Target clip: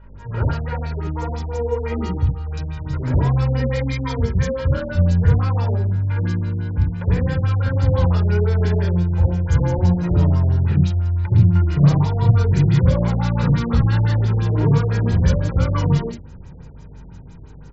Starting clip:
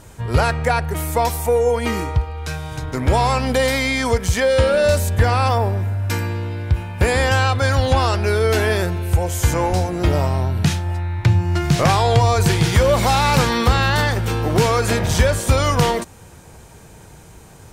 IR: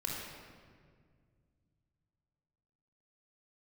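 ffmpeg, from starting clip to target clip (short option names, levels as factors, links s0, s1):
-filter_complex "[0:a]acrossover=split=280[s0][s1];[s0]dynaudnorm=f=650:g=5:m=2.11[s2];[s1]alimiter=limit=0.2:level=0:latency=1:release=41[s3];[s2][s3]amix=inputs=2:normalize=0,acrossover=split=610|2500[s4][s5][s6];[s4]adelay=60[s7];[s6]adelay=110[s8];[s7][s5][s8]amix=inputs=3:normalize=0,asoftclip=type=tanh:threshold=0.562,aeval=exprs='val(0)+0.0126*(sin(2*PI*50*n/s)+sin(2*PI*2*50*n/s)/2+sin(2*PI*3*50*n/s)/3+sin(2*PI*4*50*n/s)/4+sin(2*PI*5*50*n/s)/5)':c=same,asplit=2[s9][s10];[s10]asetrate=88200,aresample=44100,atempo=0.5,volume=0.141[s11];[s9][s11]amix=inputs=2:normalize=0,flanger=delay=5.2:depth=1.5:regen=84:speed=1.4:shape=sinusoidal[s12];[1:a]atrim=start_sample=2205,atrim=end_sample=4410[s13];[s12][s13]afir=irnorm=-1:irlink=0,afftfilt=real='re*lt(b*sr/1024,730*pow(7800/730,0.5+0.5*sin(2*PI*5.9*pts/sr)))':imag='im*lt(b*sr/1024,730*pow(7800/730,0.5+0.5*sin(2*PI*5.9*pts/sr)))':win_size=1024:overlap=0.75"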